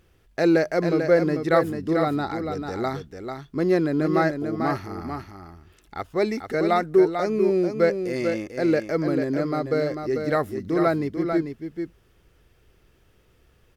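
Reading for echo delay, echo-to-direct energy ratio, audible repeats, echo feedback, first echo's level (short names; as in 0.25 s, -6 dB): 0.443 s, -6.5 dB, 1, no steady repeat, -6.5 dB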